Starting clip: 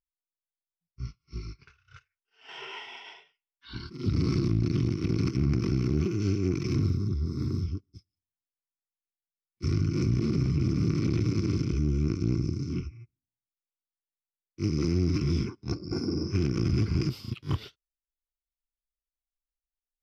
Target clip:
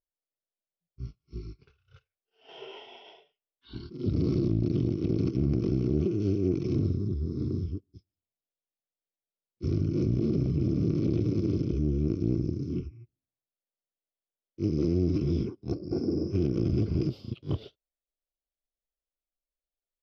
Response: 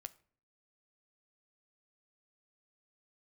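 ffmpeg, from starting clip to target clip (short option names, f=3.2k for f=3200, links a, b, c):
-af "firequalizer=gain_entry='entry(120,0);entry(600,10);entry(930,-6);entry(1900,-13);entry(3200,-2);entry(7900,-17)':delay=0.05:min_phase=1,volume=-2dB"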